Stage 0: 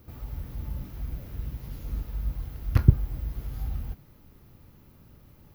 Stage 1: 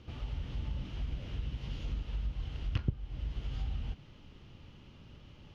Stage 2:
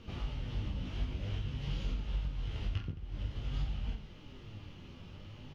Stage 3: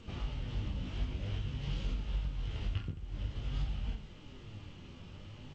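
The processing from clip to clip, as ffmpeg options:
-af "lowpass=f=6500:w=0.5412,lowpass=f=6500:w=1.3066,equalizer=f=3000:w=2.6:g=14,acompressor=threshold=0.0224:ratio=3"
-af "alimiter=level_in=2:limit=0.0631:level=0:latency=1:release=346,volume=0.501,flanger=delay=4.2:depth=8.3:regen=47:speed=0.51:shape=triangular,aecho=1:1:20|48|87.2|142.1|218.9:0.631|0.398|0.251|0.158|0.1,volume=2"
-ar 16000 -c:a g722

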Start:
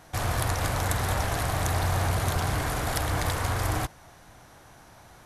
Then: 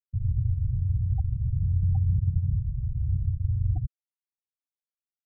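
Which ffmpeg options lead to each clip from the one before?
-af "lowshelf=f=350:g=4.5,afftfilt=real='re*gte(hypot(re,im),0.282)':imag='im*gte(hypot(re,im),0.282)':win_size=1024:overlap=0.75"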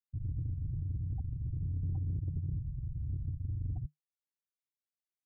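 -af "asoftclip=type=tanh:threshold=0.0944,equalizer=f=150:t=o:w=0.28:g=8,volume=0.355"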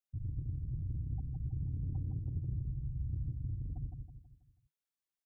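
-af "aecho=1:1:162|324|486|648|810:0.596|0.256|0.11|0.0474|0.0204,volume=0.794"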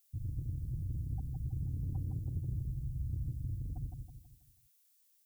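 -af "crystalizer=i=10:c=0"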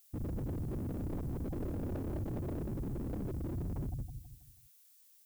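-af "aeval=exprs='0.0112*(abs(mod(val(0)/0.0112+3,4)-2)-1)':c=same,volume=2.11"

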